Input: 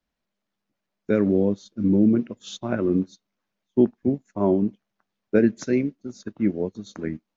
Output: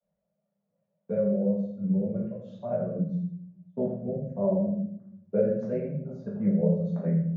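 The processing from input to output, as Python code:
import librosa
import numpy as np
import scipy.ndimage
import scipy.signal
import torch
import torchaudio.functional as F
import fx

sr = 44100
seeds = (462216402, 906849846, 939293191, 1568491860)

p1 = fx.double_bandpass(x, sr, hz=310.0, octaves=1.7)
p2 = fx.rider(p1, sr, range_db=5, speed_s=2.0)
p3 = fx.vibrato(p2, sr, rate_hz=0.88, depth_cents=38.0)
p4 = fx.dereverb_blind(p3, sr, rt60_s=0.63)
p5 = p4 + fx.echo_single(p4, sr, ms=84, db=-9.5, dry=0)
p6 = fx.room_shoebox(p5, sr, seeds[0], volume_m3=93.0, walls='mixed', distance_m=1.7)
y = fx.band_squash(p6, sr, depth_pct=40)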